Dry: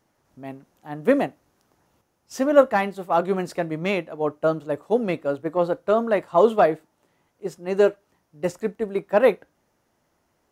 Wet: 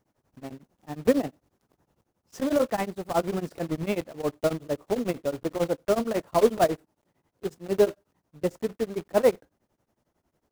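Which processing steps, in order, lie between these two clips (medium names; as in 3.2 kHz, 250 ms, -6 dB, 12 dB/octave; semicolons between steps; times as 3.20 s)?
block-companded coder 3-bit; tilt shelf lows +4.5 dB, about 790 Hz; tremolo of two beating tones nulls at 11 Hz; trim -3.5 dB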